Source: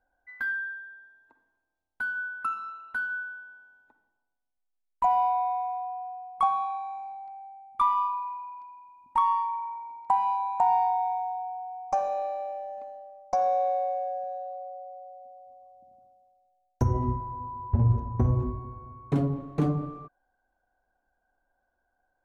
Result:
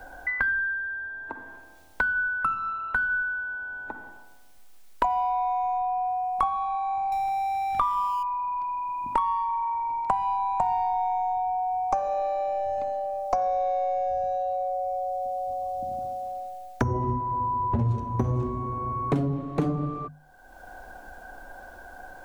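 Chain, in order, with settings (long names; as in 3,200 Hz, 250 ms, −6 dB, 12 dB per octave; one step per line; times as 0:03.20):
0:07.12–0:08.23: converter with a step at zero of −40 dBFS
mains-hum notches 50/100/150/200/250 Hz
multiband upward and downward compressor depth 100%
level +2.5 dB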